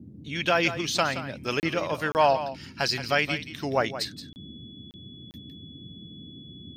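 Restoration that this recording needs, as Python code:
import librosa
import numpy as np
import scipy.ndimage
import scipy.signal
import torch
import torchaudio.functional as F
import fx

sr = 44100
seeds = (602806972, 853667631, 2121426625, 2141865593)

y = fx.notch(x, sr, hz=3400.0, q=30.0)
y = fx.fix_interpolate(y, sr, at_s=(1.6, 2.12, 4.33, 4.91, 5.31), length_ms=29.0)
y = fx.noise_reduce(y, sr, print_start_s=6.07, print_end_s=6.57, reduce_db=26.0)
y = fx.fix_echo_inverse(y, sr, delay_ms=172, level_db=-12.0)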